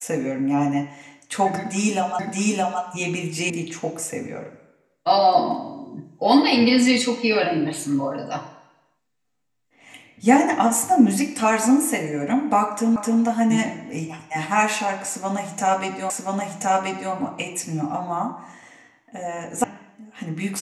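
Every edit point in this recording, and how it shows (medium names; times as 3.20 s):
2.19 s: repeat of the last 0.62 s
3.50 s: sound stops dead
12.96 s: repeat of the last 0.26 s
16.10 s: repeat of the last 1.03 s
19.64 s: sound stops dead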